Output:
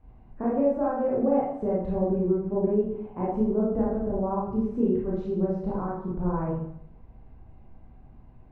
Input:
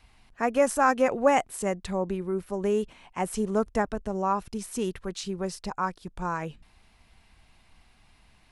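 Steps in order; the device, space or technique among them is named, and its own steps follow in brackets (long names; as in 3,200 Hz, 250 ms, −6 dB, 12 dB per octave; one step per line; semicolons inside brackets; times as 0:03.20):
television next door (downward compressor 4 to 1, threshold −30 dBFS, peak gain reduction 12.5 dB; low-pass filter 520 Hz 12 dB per octave; convolution reverb RT60 0.75 s, pre-delay 22 ms, DRR −7 dB)
level +4 dB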